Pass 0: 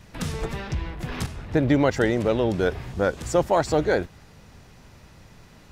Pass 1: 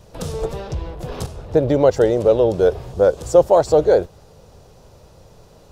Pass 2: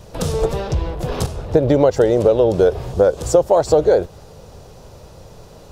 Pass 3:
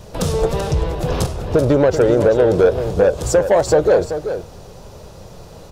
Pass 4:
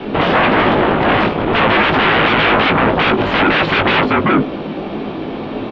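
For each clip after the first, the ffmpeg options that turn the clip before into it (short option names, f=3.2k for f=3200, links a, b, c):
-af "equalizer=f=250:t=o:w=1:g=-7,equalizer=f=500:t=o:w=1:g=10,equalizer=f=2k:t=o:w=1:g=-12,volume=2.5dB"
-af "acompressor=threshold=-16dB:ratio=5,volume=6dB"
-af "flanger=delay=4.6:depth=2.1:regen=87:speed=0.6:shape=triangular,asoftclip=type=tanh:threshold=-13.5dB,aecho=1:1:385:0.335,volume=7dB"
-filter_complex "[0:a]aeval=exprs='0.596*sin(PI/2*8.91*val(0)/0.596)':c=same,asplit=2[a][b];[b]adelay=19,volume=-7dB[c];[a][c]amix=inputs=2:normalize=0,highpass=f=330:t=q:w=0.5412,highpass=f=330:t=q:w=1.307,lowpass=f=3.4k:t=q:w=0.5176,lowpass=f=3.4k:t=q:w=0.7071,lowpass=f=3.4k:t=q:w=1.932,afreqshift=-210,volume=-4dB"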